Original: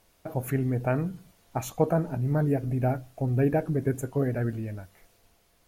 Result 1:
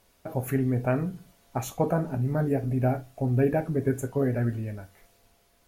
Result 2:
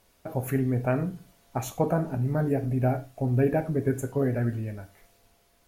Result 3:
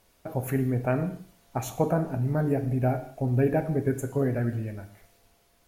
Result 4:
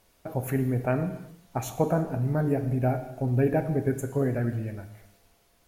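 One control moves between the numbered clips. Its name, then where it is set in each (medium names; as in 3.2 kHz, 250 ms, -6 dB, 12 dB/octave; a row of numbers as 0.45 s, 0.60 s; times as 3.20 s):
gated-style reverb, gate: 90 ms, 130 ms, 250 ms, 380 ms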